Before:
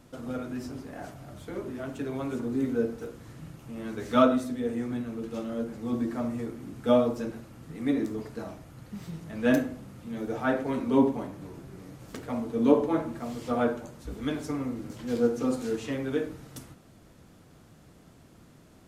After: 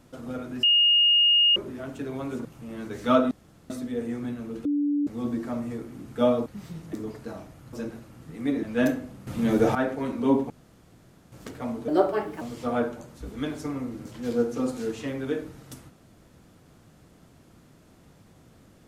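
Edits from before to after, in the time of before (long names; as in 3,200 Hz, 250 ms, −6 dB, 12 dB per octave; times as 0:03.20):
0:00.63–0:01.56: beep over 2,850 Hz −16 dBFS
0:02.45–0:03.52: remove
0:04.38: splice in room tone 0.39 s
0:05.33–0:05.75: beep over 290 Hz −21.5 dBFS
0:07.14–0:08.04: swap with 0:08.84–0:09.31
0:09.95–0:10.43: clip gain +12 dB
0:11.18–0:12.00: fill with room tone
0:12.56–0:13.26: play speed 131%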